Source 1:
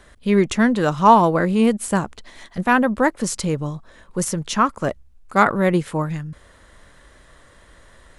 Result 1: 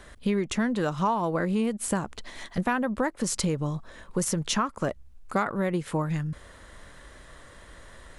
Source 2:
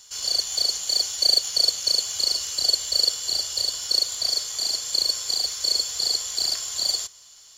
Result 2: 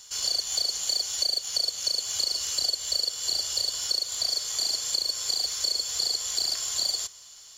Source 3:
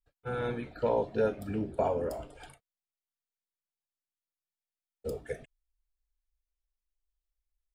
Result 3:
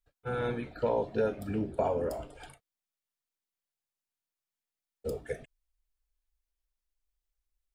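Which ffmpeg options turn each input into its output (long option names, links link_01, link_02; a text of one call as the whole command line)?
ffmpeg -i in.wav -af "acompressor=threshold=-24dB:ratio=8,volume=1dB" out.wav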